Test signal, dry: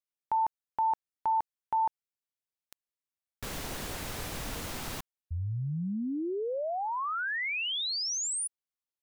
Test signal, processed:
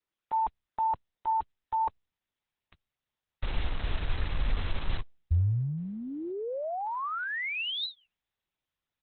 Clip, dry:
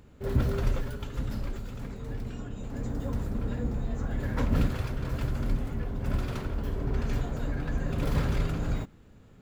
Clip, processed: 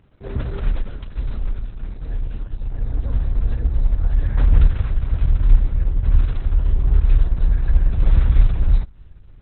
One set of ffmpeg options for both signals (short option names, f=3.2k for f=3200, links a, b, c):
-af "aresample=11025,aresample=44100,asubboost=boost=10:cutoff=68" -ar 48000 -c:a libopus -b:a 6k